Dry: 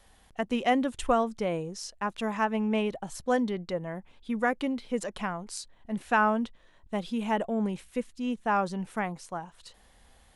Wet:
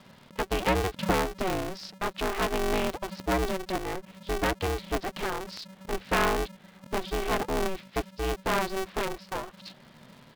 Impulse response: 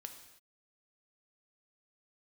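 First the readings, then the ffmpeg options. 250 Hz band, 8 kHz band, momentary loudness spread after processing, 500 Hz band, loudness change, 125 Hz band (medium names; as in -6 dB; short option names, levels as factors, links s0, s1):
-4.0 dB, +3.5 dB, 10 LU, +1.0 dB, 0.0 dB, +4.0 dB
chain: -filter_complex "[0:a]asplit=2[s0][s1];[s1]acompressor=threshold=0.0126:ratio=6,volume=1[s2];[s0][s2]amix=inputs=2:normalize=0,aeval=exprs='clip(val(0),-1,0.0335)':c=same,aresample=11025,aresample=44100,aeval=exprs='val(0)*sgn(sin(2*PI*190*n/s))':c=same"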